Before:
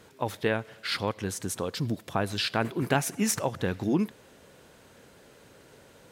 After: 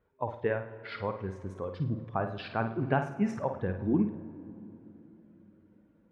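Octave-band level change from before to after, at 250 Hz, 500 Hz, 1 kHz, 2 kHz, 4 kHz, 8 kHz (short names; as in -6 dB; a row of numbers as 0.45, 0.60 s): -1.5 dB, -2.0 dB, -2.0 dB, -6.0 dB, -17.0 dB, under -25 dB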